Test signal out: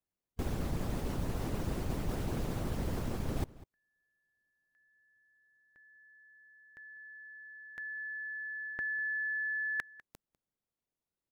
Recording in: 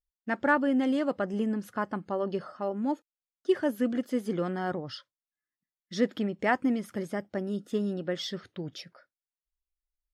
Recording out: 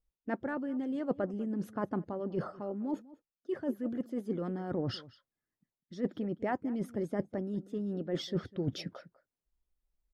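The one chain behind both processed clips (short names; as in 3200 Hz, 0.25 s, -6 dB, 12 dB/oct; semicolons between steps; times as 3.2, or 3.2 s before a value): tilt shelf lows +9 dB, about 850 Hz; reverse; compressor 8:1, threshold -34 dBFS; reverse; outdoor echo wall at 34 m, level -19 dB; harmonic-percussive split percussive +8 dB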